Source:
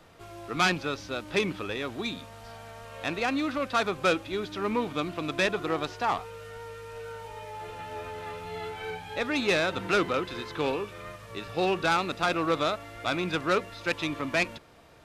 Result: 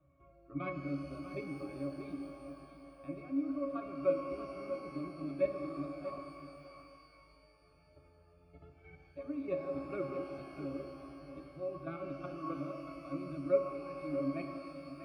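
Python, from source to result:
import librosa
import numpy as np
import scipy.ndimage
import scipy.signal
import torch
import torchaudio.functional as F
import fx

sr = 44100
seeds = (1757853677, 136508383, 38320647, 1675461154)

p1 = fx.level_steps(x, sr, step_db=12)
p2 = fx.spec_gate(p1, sr, threshold_db=-25, keep='strong')
p3 = scipy.signal.sosfilt(scipy.signal.butter(2, 3300.0, 'lowpass', fs=sr, output='sos'), p2)
p4 = fx.notch(p3, sr, hz=830.0, q=20.0)
p5 = fx.octave_resonator(p4, sr, note='C#', decay_s=0.22)
p6 = p5 + fx.echo_single(p5, sr, ms=638, db=-10.0, dry=0)
p7 = fx.dynamic_eq(p6, sr, hz=370.0, q=0.91, threshold_db=-59.0, ratio=4.0, max_db=7)
p8 = fx.rev_shimmer(p7, sr, seeds[0], rt60_s=2.7, semitones=12, shimmer_db=-8, drr_db=5.0)
y = F.gain(torch.from_numpy(p8), 3.0).numpy()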